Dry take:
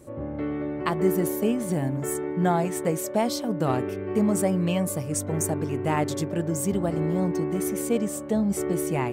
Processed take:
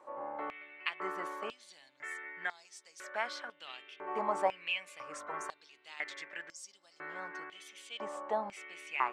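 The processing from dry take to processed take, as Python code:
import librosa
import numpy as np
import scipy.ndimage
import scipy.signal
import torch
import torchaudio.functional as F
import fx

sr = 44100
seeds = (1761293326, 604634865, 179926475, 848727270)

y = fx.spacing_loss(x, sr, db_at_10k=28)
y = fx.filter_held_highpass(y, sr, hz=2.0, low_hz=930.0, high_hz=5200.0)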